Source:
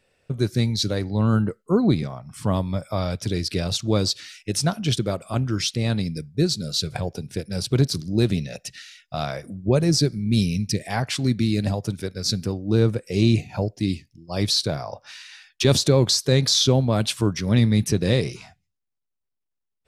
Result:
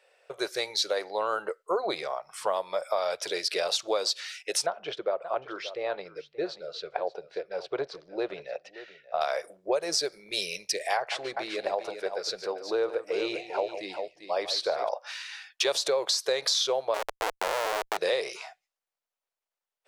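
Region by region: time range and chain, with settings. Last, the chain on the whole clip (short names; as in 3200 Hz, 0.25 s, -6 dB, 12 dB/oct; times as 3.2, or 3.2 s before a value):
4.66–9.21 tape spacing loss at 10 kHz 39 dB + echo 0.58 s -16.5 dB
10.97–14.89 LPF 1700 Hz 6 dB/oct + tapped delay 0.145/0.395 s -13.5/-9.5 dB
16.94–17.97 LPF 2100 Hz + Schmitt trigger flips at -23.5 dBFS
whole clip: inverse Chebyshev high-pass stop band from 260 Hz, stop band 40 dB; tilt -2 dB/oct; compressor 6:1, threshold -29 dBFS; gain +5.5 dB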